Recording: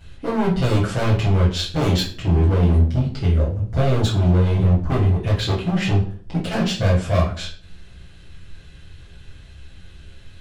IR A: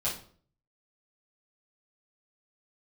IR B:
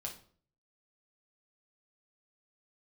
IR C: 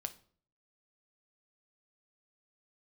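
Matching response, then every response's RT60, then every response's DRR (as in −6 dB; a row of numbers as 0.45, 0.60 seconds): A; 0.50, 0.50, 0.50 seconds; −8.5, −0.5, 8.5 decibels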